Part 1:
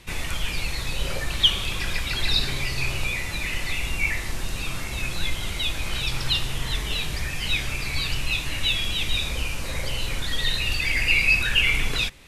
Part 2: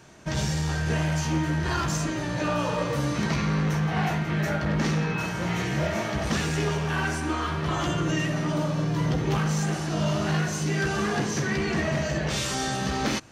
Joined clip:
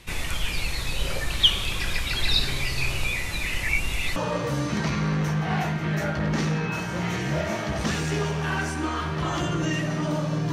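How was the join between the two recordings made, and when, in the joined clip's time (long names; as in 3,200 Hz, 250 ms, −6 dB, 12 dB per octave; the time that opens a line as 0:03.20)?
part 1
0:03.63–0:04.16: reverse
0:04.16: continue with part 2 from 0:02.62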